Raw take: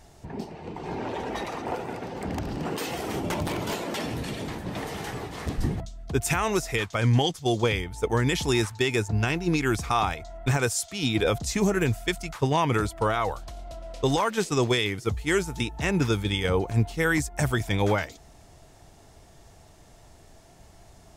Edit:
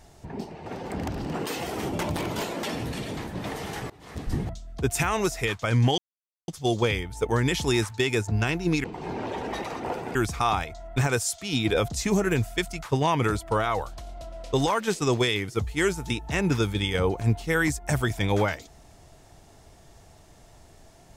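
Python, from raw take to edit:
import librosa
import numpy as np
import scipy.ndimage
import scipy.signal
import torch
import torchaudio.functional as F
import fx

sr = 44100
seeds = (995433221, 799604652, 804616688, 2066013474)

y = fx.edit(x, sr, fx.move(start_s=0.66, length_s=1.31, to_s=9.65),
    fx.fade_in_from(start_s=5.21, length_s=0.53, floor_db=-23.0),
    fx.insert_silence(at_s=7.29, length_s=0.5), tone=tone)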